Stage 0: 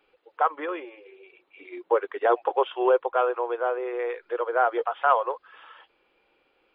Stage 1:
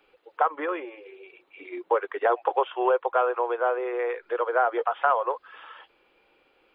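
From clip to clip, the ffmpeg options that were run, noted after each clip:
ffmpeg -i in.wav -filter_complex "[0:a]acrossover=split=510|2700[link_01][link_02][link_03];[link_01]acompressor=threshold=-36dB:ratio=4[link_04];[link_02]acompressor=threshold=-23dB:ratio=4[link_05];[link_03]acompressor=threshold=-58dB:ratio=4[link_06];[link_04][link_05][link_06]amix=inputs=3:normalize=0,volume=3.5dB" out.wav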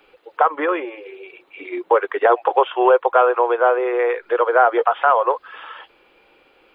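ffmpeg -i in.wav -af "alimiter=level_in=11.5dB:limit=-1dB:release=50:level=0:latency=1,volume=-2.5dB" out.wav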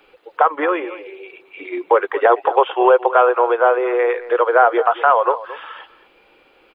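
ffmpeg -i in.wav -filter_complex "[0:a]asplit=2[link_01][link_02];[link_02]adelay=221.6,volume=-16dB,highshelf=frequency=4000:gain=-4.99[link_03];[link_01][link_03]amix=inputs=2:normalize=0,volume=1.5dB" out.wav

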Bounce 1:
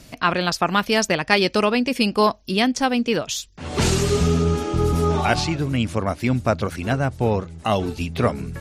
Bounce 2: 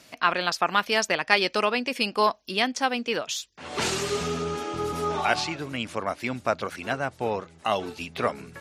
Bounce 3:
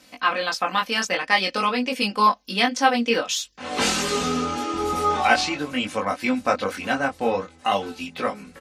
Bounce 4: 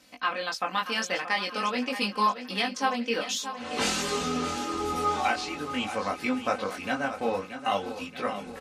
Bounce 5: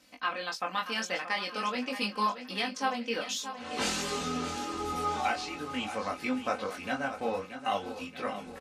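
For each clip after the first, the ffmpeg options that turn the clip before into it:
ffmpeg -i in.wav -af "highpass=frequency=820:poles=1,highshelf=frequency=4500:gain=-7" out.wav
ffmpeg -i in.wav -af "aecho=1:1:3.9:0.68,dynaudnorm=framelen=230:gausssize=13:maxgain=11.5dB,flanger=delay=19.5:depth=2.2:speed=0.49,volume=2dB" out.wav
ffmpeg -i in.wav -af "areverse,acompressor=mode=upward:threshold=-31dB:ratio=2.5,areverse,alimiter=limit=-8.5dB:level=0:latency=1:release=479,aecho=1:1:628|1256|1884|2512|3140:0.282|0.141|0.0705|0.0352|0.0176,volume=-5.5dB" out.wav
ffmpeg -i in.wav -filter_complex "[0:a]asplit=2[link_01][link_02];[link_02]adelay=23,volume=-12dB[link_03];[link_01][link_03]amix=inputs=2:normalize=0,volume=-4dB" out.wav

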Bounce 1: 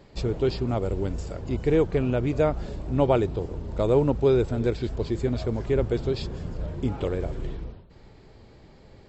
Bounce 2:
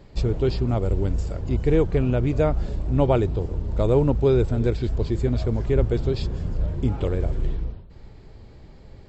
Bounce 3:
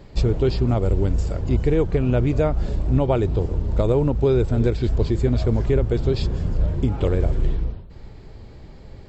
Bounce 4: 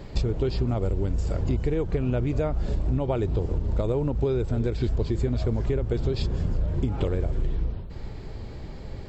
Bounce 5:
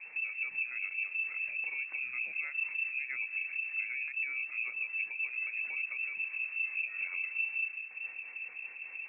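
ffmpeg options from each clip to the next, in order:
ffmpeg -i in.wav -af "lowshelf=frequency=120:gain=10" out.wav
ffmpeg -i in.wav -af "alimiter=limit=-13dB:level=0:latency=1:release=201,volume=4dB" out.wav
ffmpeg -i in.wav -af "acompressor=threshold=-25dB:ratio=10,volume=4dB" out.wav
ffmpeg -i in.wav -filter_complex "[0:a]alimiter=limit=-21.5dB:level=0:latency=1:release=204,acrossover=split=400[link_01][link_02];[link_01]aeval=exprs='val(0)*(1-0.7/2+0.7/2*cos(2*PI*5*n/s))':channel_layout=same[link_03];[link_02]aeval=exprs='val(0)*(1-0.7/2-0.7/2*cos(2*PI*5*n/s))':channel_layout=same[link_04];[link_03][link_04]amix=inputs=2:normalize=0,lowpass=frequency=2300:width_type=q:width=0.5098,lowpass=frequency=2300:width_type=q:width=0.6013,lowpass=frequency=2300:width_type=q:width=0.9,lowpass=frequency=2300:width_type=q:width=2.563,afreqshift=-2700,volume=-4.5dB" out.wav

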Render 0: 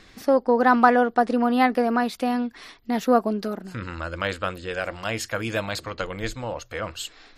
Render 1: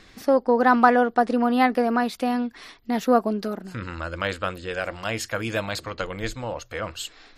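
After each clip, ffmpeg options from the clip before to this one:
ffmpeg -i in.wav -af anull out.wav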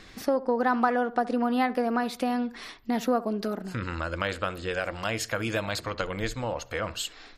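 ffmpeg -i in.wav -filter_complex "[0:a]asplit=2[link_01][link_02];[link_02]adelay=68,lowpass=frequency=1500:poles=1,volume=-17.5dB,asplit=2[link_03][link_04];[link_04]adelay=68,lowpass=frequency=1500:poles=1,volume=0.34,asplit=2[link_05][link_06];[link_06]adelay=68,lowpass=frequency=1500:poles=1,volume=0.34[link_07];[link_01][link_03][link_05][link_07]amix=inputs=4:normalize=0,acompressor=threshold=-29dB:ratio=2,volume=1.5dB" out.wav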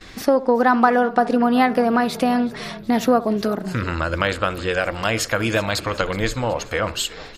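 ffmpeg -i in.wav -filter_complex "[0:a]asplit=6[link_01][link_02][link_03][link_04][link_05][link_06];[link_02]adelay=372,afreqshift=-35,volume=-19dB[link_07];[link_03]adelay=744,afreqshift=-70,volume=-23.4dB[link_08];[link_04]adelay=1116,afreqshift=-105,volume=-27.9dB[link_09];[link_05]adelay=1488,afreqshift=-140,volume=-32.3dB[link_10];[link_06]adelay=1860,afreqshift=-175,volume=-36.7dB[link_11];[link_01][link_07][link_08][link_09][link_10][link_11]amix=inputs=6:normalize=0,agate=range=-21dB:threshold=-52dB:ratio=16:detection=peak,volume=8.5dB" out.wav

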